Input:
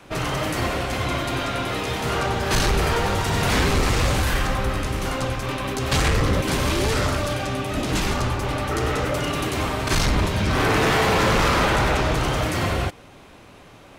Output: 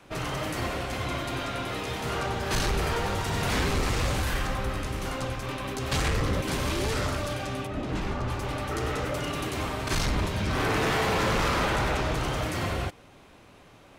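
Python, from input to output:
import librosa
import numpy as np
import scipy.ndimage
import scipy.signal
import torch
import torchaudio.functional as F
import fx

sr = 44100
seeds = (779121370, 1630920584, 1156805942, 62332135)

y = fx.lowpass(x, sr, hz=1600.0, slope=6, at=(7.66, 8.27), fade=0.02)
y = y * librosa.db_to_amplitude(-6.5)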